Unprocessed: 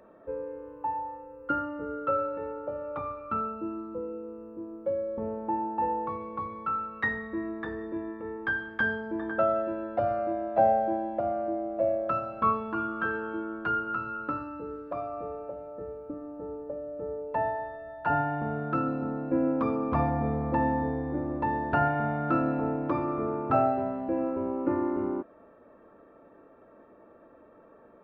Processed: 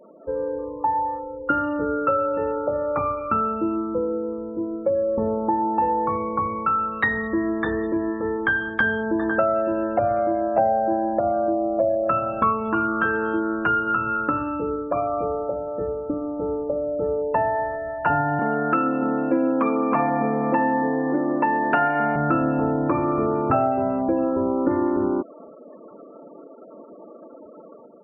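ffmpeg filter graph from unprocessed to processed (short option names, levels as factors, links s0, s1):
-filter_complex "[0:a]asettb=1/sr,asplit=3[s0][s1][s2];[s0]atrim=end=18.394[s3];[s1]atrim=start=18.39:end=22.16,asetpts=PTS-STARTPTS,afade=t=in:d=0.004:c=qsin,afade=t=out:st=3.766:d=0.004:c=qsin,highpass=f=190:w=0.5412,highpass=f=190:w=1.3066,equalizer=f=2300:t=o:w=1.9:g=5[s4];[s2]atrim=start=22.156[s5];[s3][s4]acrossfade=d=0.004:c1=hsin:c2=qsin[s6];[s6][s5]acrossfade=d=0.004:c1=qsin:c2=hsin,acompressor=threshold=0.0251:ratio=3,afftfilt=real='re*gte(hypot(re,im),0.00355)':imag='im*gte(hypot(re,im),0.00355)':win_size=1024:overlap=0.75,dynaudnorm=f=150:g=5:m=1.88,volume=2.24"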